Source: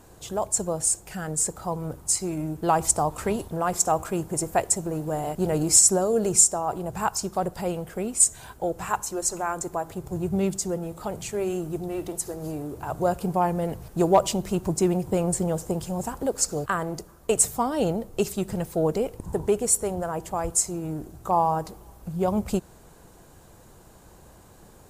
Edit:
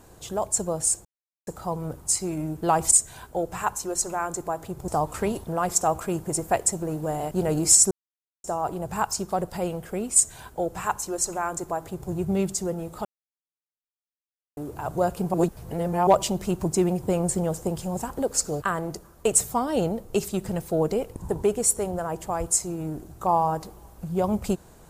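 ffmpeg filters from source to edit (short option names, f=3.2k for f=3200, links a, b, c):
-filter_complex "[0:a]asplit=11[a][b][c][d][e][f][g][h][i][j][k];[a]atrim=end=1.05,asetpts=PTS-STARTPTS,afade=t=out:st=1.046:d=0.004:c=hsin[l];[b]atrim=start=1.05:end=1.47,asetpts=PTS-STARTPTS,volume=0[m];[c]atrim=start=1.47:end=2.922,asetpts=PTS-STARTPTS,afade=t=in:d=0.004:c=hsin[n];[d]atrim=start=8.188:end=10.152[o];[e]atrim=start=2.918:end=5.95,asetpts=PTS-STARTPTS,afade=t=out:st=3.028:d=0.004:c=hsin[p];[f]atrim=start=5.95:end=6.48,asetpts=PTS-STARTPTS,volume=0[q];[g]atrim=start=6.48:end=11.09,asetpts=PTS-STARTPTS,afade=t=in:d=0.004:c=hsin,afade=t=out:st=4.606:d=0.004:c=hsin[r];[h]atrim=start=11.09:end=12.61,asetpts=PTS-STARTPTS,volume=0[s];[i]atrim=start=12.61:end=13.382,asetpts=PTS-STARTPTS,afade=t=in:d=0.004:c=hsin[t];[j]atrim=start=13.378:end=14.112,asetpts=PTS-STARTPTS,areverse[u];[k]atrim=start=14.108[v];[l][m][n]concat=n=3:v=0:a=1[w];[w][o]acrossfade=d=0.004:c1=hsin:c2=hsin[x];[p][q][r][s][t]concat=n=5:v=0:a=1[y];[x][y]acrossfade=d=0.004:c1=hsin:c2=hsin[z];[z][u]acrossfade=d=0.004:c1=hsin:c2=hsin[aa];[aa][v]acrossfade=d=0.004:c1=hsin:c2=hsin"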